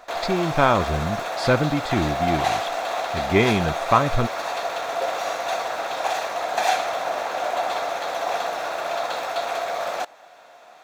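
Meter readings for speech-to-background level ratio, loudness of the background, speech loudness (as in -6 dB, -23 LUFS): 3.0 dB, -26.0 LUFS, -23.0 LUFS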